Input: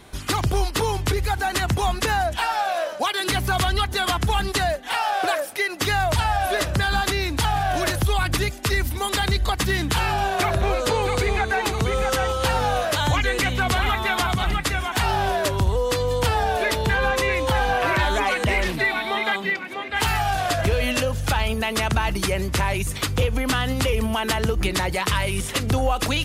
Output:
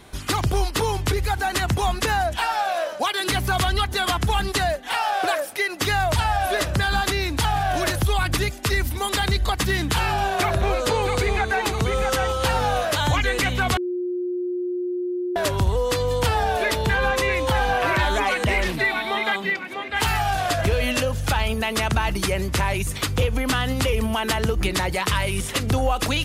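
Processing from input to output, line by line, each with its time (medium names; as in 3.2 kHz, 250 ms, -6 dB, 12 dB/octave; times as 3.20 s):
13.77–15.36 s: bleep 358 Hz -23 dBFS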